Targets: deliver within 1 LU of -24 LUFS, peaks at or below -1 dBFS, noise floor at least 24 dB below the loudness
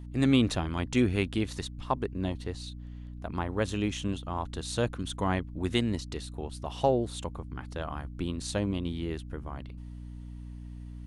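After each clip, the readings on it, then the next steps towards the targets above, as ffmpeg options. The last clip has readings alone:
hum 60 Hz; harmonics up to 300 Hz; hum level -39 dBFS; loudness -31.5 LUFS; peak -11.5 dBFS; loudness target -24.0 LUFS
-> -af "bandreject=f=60:t=h:w=4,bandreject=f=120:t=h:w=4,bandreject=f=180:t=h:w=4,bandreject=f=240:t=h:w=4,bandreject=f=300:t=h:w=4"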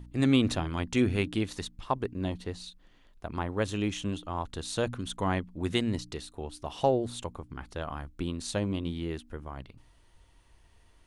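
hum none; loudness -32.0 LUFS; peak -12.0 dBFS; loudness target -24.0 LUFS
-> -af "volume=8dB"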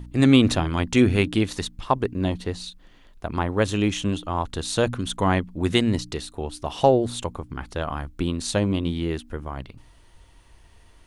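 loudness -24.0 LUFS; peak -4.0 dBFS; noise floor -52 dBFS

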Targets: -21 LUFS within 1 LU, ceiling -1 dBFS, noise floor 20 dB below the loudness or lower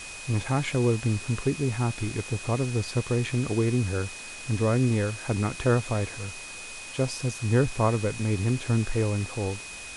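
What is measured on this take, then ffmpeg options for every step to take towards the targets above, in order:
steady tone 2500 Hz; tone level -41 dBFS; noise floor -40 dBFS; noise floor target -48 dBFS; loudness -27.5 LUFS; peak -11.5 dBFS; loudness target -21.0 LUFS
-> -af "bandreject=f=2.5k:w=30"
-af "afftdn=nr=8:nf=-40"
-af "volume=6.5dB"

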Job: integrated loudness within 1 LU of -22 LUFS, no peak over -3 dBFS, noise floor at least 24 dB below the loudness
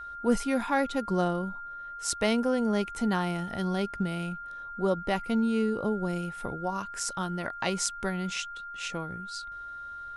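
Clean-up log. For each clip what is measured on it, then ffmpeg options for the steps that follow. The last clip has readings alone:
steady tone 1400 Hz; tone level -38 dBFS; loudness -30.5 LUFS; peak -9.5 dBFS; loudness target -22.0 LUFS
-> -af "bandreject=f=1.4k:w=30"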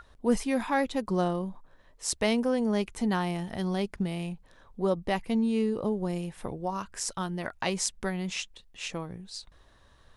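steady tone none; loudness -30.5 LUFS; peak -9.0 dBFS; loudness target -22.0 LUFS
-> -af "volume=8.5dB,alimiter=limit=-3dB:level=0:latency=1"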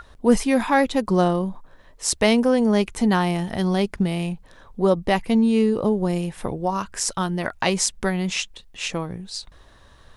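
loudness -22.0 LUFS; peak -3.0 dBFS; noise floor -51 dBFS

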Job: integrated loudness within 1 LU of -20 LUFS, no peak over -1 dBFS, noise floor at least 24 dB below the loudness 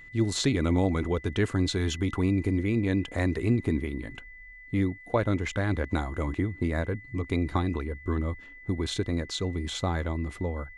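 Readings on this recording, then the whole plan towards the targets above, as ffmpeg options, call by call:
steady tone 2000 Hz; tone level -46 dBFS; loudness -29.0 LUFS; peak -11.5 dBFS; loudness target -20.0 LUFS
-> -af "bandreject=f=2k:w=30"
-af "volume=9dB"

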